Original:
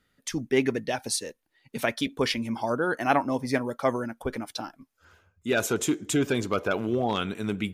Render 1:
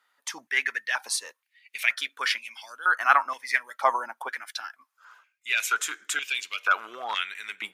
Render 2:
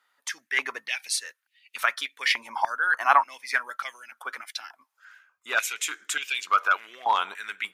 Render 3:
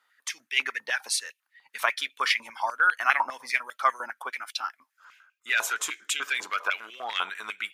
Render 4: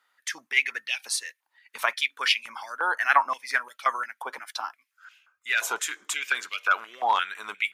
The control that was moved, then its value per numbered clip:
high-pass on a step sequencer, speed: 2.1, 3.4, 10, 5.7 Hertz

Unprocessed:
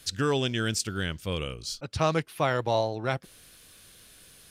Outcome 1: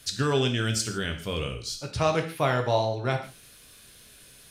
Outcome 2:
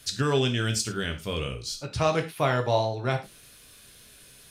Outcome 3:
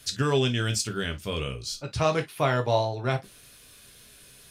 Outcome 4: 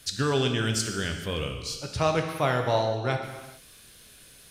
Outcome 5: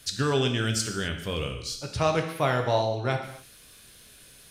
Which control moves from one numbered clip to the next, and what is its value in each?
reverb whose tail is shaped and stops, gate: 190, 130, 80, 460, 290 milliseconds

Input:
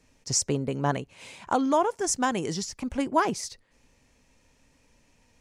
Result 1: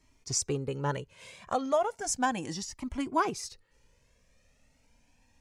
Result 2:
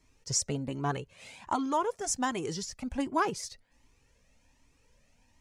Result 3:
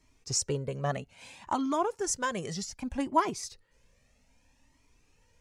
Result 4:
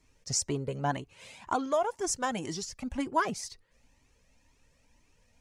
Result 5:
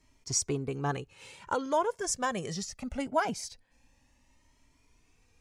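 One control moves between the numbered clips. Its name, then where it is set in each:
flanger whose copies keep moving one way, speed: 0.35, 1.3, 0.63, 2, 0.22 Hertz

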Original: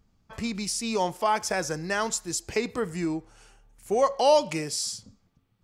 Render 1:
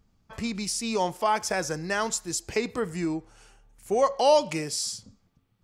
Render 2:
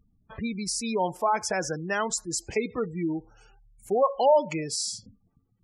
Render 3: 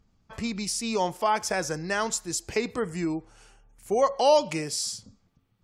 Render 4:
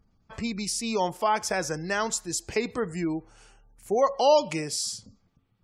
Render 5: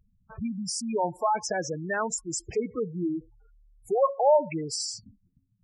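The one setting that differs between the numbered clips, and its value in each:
gate on every frequency bin, under each frame's peak: −60, −20, −45, −35, −10 decibels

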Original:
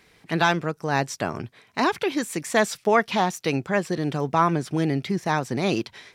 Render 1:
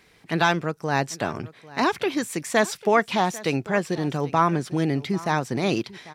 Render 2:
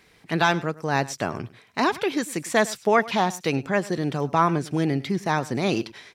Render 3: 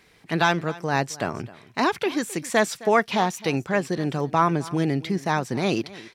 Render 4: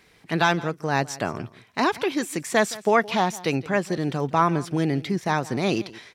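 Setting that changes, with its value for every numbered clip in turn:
single-tap delay, delay time: 795, 103, 263, 168 milliseconds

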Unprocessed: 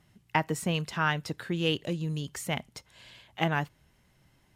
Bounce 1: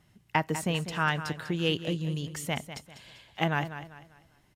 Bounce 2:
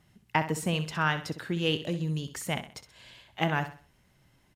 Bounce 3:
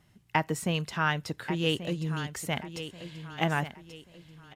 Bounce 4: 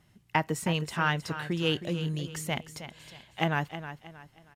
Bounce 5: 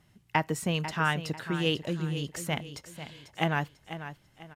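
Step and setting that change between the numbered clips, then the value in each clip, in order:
repeating echo, delay time: 197, 64, 1,134, 316, 494 milliseconds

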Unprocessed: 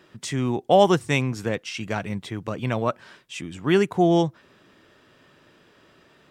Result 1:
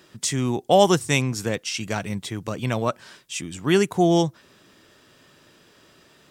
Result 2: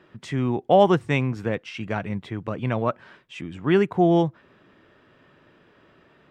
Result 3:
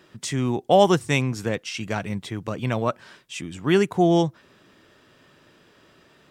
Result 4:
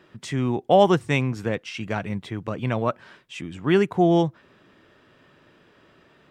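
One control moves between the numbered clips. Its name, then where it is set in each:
bass and treble, treble: +11, −15, +3, −7 decibels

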